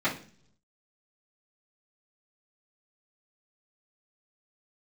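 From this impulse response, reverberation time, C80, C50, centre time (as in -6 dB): 0.45 s, 16.0 dB, 10.5 dB, 18 ms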